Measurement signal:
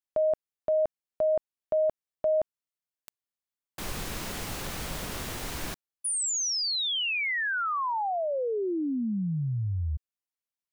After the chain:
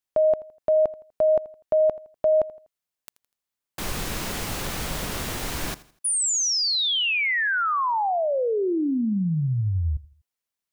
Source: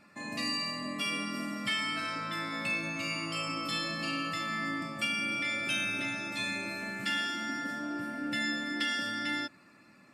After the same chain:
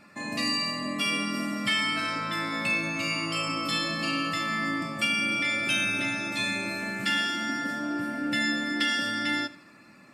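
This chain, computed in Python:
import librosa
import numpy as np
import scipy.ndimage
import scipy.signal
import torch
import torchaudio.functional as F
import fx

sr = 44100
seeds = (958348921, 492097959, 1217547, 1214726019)

y = fx.echo_feedback(x, sr, ms=82, feedback_pct=37, wet_db=-19)
y = y * librosa.db_to_amplitude(5.5)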